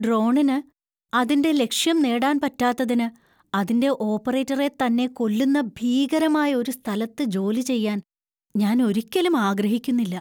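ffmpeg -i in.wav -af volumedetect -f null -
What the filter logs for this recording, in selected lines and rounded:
mean_volume: -22.0 dB
max_volume: -9.2 dB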